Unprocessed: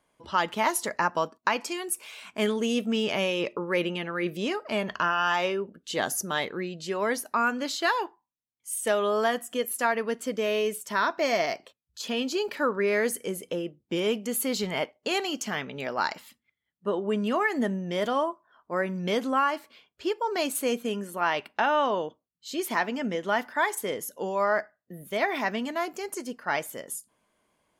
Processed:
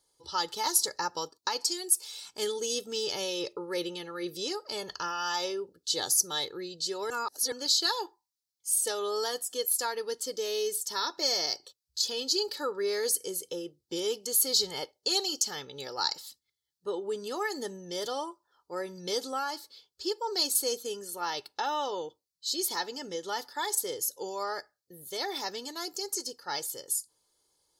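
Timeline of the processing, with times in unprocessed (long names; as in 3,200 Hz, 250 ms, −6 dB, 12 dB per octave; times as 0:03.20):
0:07.10–0:07.52: reverse
whole clip: high shelf with overshoot 3,300 Hz +11 dB, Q 3; comb filter 2.3 ms, depth 75%; level −8.5 dB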